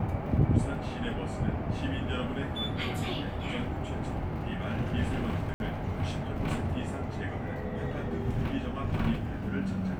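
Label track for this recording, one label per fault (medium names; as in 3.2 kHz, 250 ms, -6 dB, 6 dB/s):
5.540000	5.600000	dropout 61 ms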